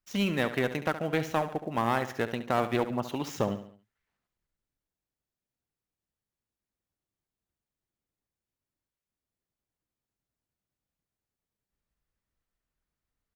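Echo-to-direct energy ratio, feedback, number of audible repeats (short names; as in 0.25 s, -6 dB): -11.0 dB, 44%, 4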